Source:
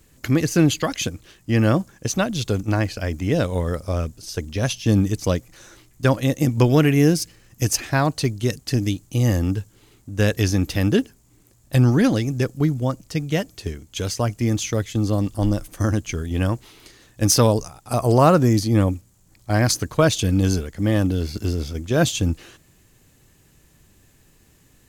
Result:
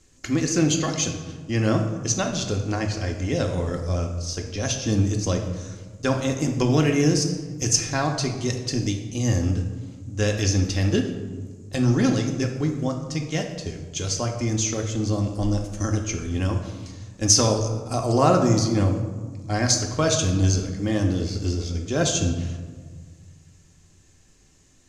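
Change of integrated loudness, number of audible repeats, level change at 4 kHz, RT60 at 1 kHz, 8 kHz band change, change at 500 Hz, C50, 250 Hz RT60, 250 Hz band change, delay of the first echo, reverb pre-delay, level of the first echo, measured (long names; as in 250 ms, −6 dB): −2.5 dB, no echo audible, +0.5 dB, 1.5 s, +3.5 dB, −3.0 dB, 6.5 dB, 2.1 s, −3.0 dB, no echo audible, 3 ms, no echo audible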